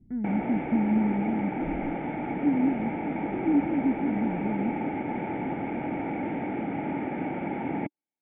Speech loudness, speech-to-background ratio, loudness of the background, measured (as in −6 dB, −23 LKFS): −28.5 LKFS, 3.0 dB, −31.5 LKFS